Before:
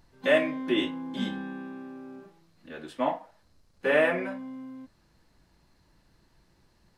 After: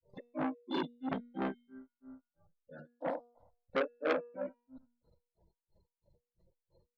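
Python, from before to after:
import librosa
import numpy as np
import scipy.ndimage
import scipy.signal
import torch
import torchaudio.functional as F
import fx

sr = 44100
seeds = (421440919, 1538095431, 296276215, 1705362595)

y = fx.spec_quant(x, sr, step_db=30)
y = fx.env_phaser(y, sr, low_hz=250.0, high_hz=1900.0, full_db=-27.0)
y = fx.level_steps(y, sr, step_db=20)
y = fx.small_body(y, sr, hz=(530.0, 1400.0, 2000.0), ring_ms=20, db=11)
y = fx.spec_gate(y, sr, threshold_db=-30, keep='strong')
y = fx.peak_eq(y, sr, hz=3900.0, db=14.0, octaves=1.1)
y = fx.echo_thinned(y, sr, ms=126, feedback_pct=24, hz=670.0, wet_db=-3)
y = fx.granulator(y, sr, seeds[0], grain_ms=220.0, per_s=3.0, spray_ms=100.0, spread_st=0)
y = fx.tilt_shelf(y, sr, db=10.0, hz=940.0)
y = fx.comb_fb(y, sr, f0_hz=240.0, decay_s=0.6, harmonics='all', damping=0.0, mix_pct=50)
y = fx.transformer_sat(y, sr, knee_hz=1700.0)
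y = y * librosa.db_to_amplitude(8.5)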